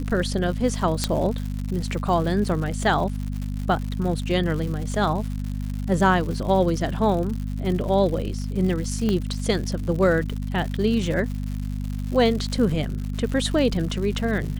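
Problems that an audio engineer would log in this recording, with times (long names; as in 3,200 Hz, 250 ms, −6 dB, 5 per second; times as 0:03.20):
surface crackle 160 per second −30 dBFS
mains hum 50 Hz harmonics 5 −28 dBFS
0:01.04: click −7 dBFS
0:09.09: click −12 dBFS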